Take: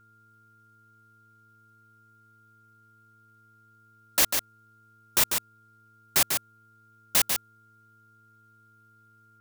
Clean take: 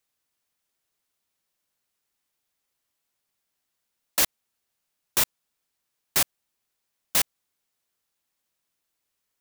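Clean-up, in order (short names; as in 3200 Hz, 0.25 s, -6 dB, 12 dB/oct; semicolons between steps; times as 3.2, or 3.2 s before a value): de-hum 110.1 Hz, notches 4; notch 1400 Hz, Q 30; inverse comb 0.145 s -5.5 dB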